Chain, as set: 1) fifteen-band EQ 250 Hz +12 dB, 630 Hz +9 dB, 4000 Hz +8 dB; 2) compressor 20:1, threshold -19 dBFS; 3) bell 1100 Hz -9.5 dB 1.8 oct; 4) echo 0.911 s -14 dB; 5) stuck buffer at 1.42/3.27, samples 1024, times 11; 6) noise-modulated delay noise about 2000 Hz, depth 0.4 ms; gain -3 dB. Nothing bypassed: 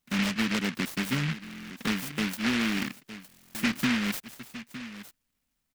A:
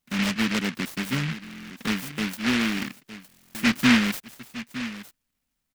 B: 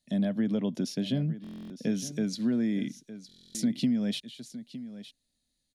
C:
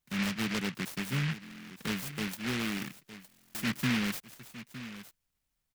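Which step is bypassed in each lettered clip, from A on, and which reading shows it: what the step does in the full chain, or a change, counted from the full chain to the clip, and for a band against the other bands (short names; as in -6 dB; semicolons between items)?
2, mean gain reduction 2.0 dB; 6, 2 kHz band -17.5 dB; 1, 125 Hz band +3.5 dB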